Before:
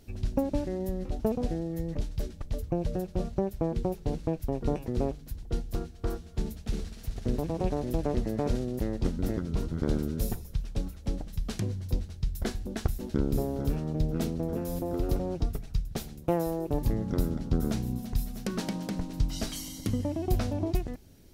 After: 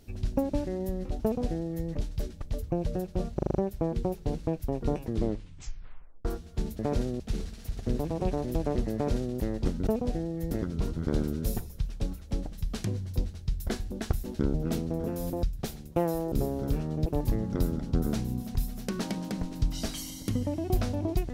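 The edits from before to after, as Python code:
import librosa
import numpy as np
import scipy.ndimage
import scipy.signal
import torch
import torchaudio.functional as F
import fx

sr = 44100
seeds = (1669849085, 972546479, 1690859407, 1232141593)

y = fx.edit(x, sr, fx.duplicate(start_s=1.23, length_s=0.64, to_s=9.26),
    fx.stutter(start_s=3.35, slice_s=0.04, count=6),
    fx.tape_stop(start_s=4.85, length_s=1.2),
    fx.duplicate(start_s=8.33, length_s=0.41, to_s=6.59),
    fx.move(start_s=13.29, length_s=0.74, to_s=16.64),
    fx.cut(start_s=14.92, length_s=0.83), tone=tone)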